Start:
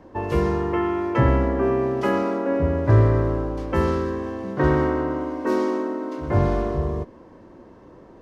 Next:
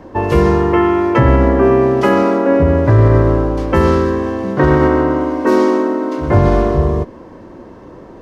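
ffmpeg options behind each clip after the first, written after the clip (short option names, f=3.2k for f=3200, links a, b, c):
-af "alimiter=level_in=11.5dB:limit=-1dB:release=50:level=0:latency=1,volume=-1dB"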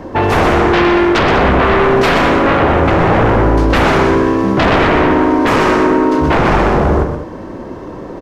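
-filter_complex "[0:a]aeval=exprs='0.841*sin(PI/2*3.55*val(0)/0.841)':c=same,asplit=2[a][b];[b]aecho=0:1:125.4|198.3:0.447|0.251[c];[a][c]amix=inputs=2:normalize=0,volume=-7dB"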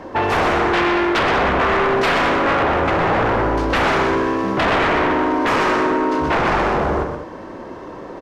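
-filter_complex "[0:a]asplit=2[a][b];[b]highpass=f=720:p=1,volume=9dB,asoftclip=type=tanh:threshold=-3.5dB[c];[a][c]amix=inputs=2:normalize=0,lowpass=f=5.5k:p=1,volume=-6dB,volume=-6dB"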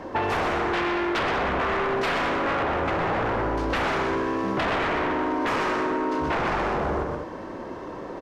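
-af "acompressor=threshold=-20dB:ratio=6,volume=-2.5dB"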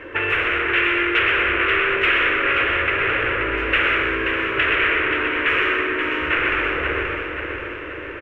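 -af "firequalizer=gain_entry='entry(110,0);entry(190,-17);entry(320,0);entry(470,2);entry(770,-14);entry(1400,8);entry(2700,15);entry(4400,-16);entry(11000,-8)':delay=0.05:min_phase=1,aecho=1:1:530|1060|1590|2120|2650|3180:0.501|0.251|0.125|0.0626|0.0313|0.0157"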